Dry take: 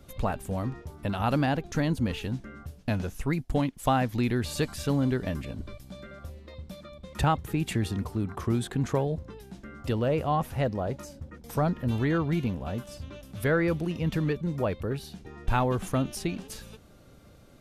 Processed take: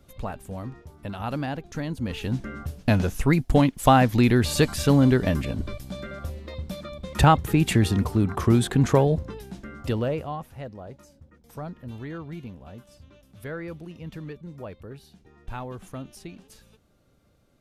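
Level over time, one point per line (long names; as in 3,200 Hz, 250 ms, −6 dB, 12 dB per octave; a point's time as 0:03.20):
0:01.95 −4 dB
0:02.44 +8 dB
0:09.13 +8 dB
0:10.02 +1.5 dB
0:10.46 −10 dB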